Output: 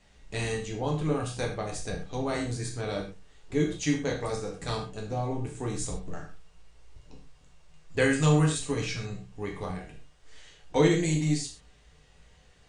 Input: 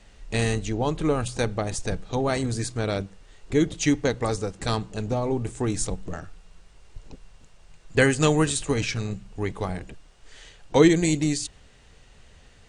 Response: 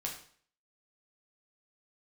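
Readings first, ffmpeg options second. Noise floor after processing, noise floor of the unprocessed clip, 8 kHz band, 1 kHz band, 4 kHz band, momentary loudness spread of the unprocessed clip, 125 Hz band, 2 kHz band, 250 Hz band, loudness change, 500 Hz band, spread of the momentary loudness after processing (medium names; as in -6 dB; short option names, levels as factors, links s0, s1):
-59 dBFS, -53 dBFS, -5.5 dB, -4.5 dB, -5.0 dB, 12 LU, -2.5 dB, -5.0 dB, -5.0 dB, -4.5 dB, -5.0 dB, 15 LU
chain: -filter_complex "[1:a]atrim=start_sample=2205,afade=t=out:st=0.19:d=0.01,atrim=end_sample=8820[s0];[0:a][s0]afir=irnorm=-1:irlink=0,volume=0.501"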